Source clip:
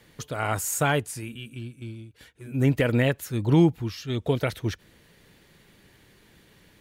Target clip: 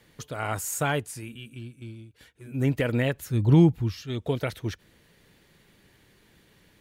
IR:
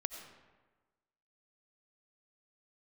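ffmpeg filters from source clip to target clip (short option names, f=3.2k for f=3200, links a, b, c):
-filter_complex "[0:a]asettb=1/sr,asplit=3[a][b][c];[a]atrim=end=3.154[d];[b]atrim=start=3.15:end=4.02,asetpts=PTS-STARTPTS,afade=t=in:d=0.004:c=qsin,afade=t=out:st=0.866:d=0.004:c=qsin,lowshelf=f=160:g=11.5[e];[c]atrim=start=4.016[f];[d][e]acrossfade=d=0.004:c1=hsin:c2=qsin[g];[g][f]acrossfade=d=0.004:c1=qsin:c2=hsin,volume=-3dB"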